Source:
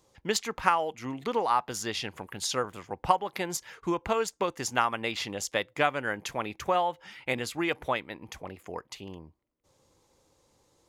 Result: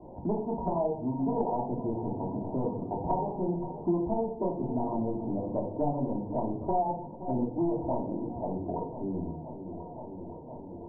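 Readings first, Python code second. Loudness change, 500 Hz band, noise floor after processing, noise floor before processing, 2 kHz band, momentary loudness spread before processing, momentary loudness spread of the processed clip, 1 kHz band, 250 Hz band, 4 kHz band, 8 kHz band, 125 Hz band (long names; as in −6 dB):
−2.0 dB, +0.5 dB, −43 dBFS, −69 dBFS, below −40 dB, 14 LU, 11 LU, −4.5 dB, +7.0 dB, below −40 dB, below −40 dB, +7.5 dB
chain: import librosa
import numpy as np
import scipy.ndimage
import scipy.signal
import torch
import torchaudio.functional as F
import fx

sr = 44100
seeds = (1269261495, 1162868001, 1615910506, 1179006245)

p1 = fx.self_delay(x, sr, depth_ms=0.89)
p2 = fx.transient(p1, sr, attack_db=1, sustain_db=6)
p3 = scipy.signal.sosfilt(scipy.signal.cheby1(6, 6, 960.0, 'lowpass', fs=sr, output='sos'), p2)
p4 = p3 + fx.echo_feedback(p3, sr, ms=519, feedback_pct=59, wet_db=-17.0, dry=0)
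p5 = fx.room_shoebox(p4, sr, seeds[0], volume_m3=430.0, walls='furnished', distance_m=3.0)
y = fx.band_squash(p5, sr, depth_pct=70)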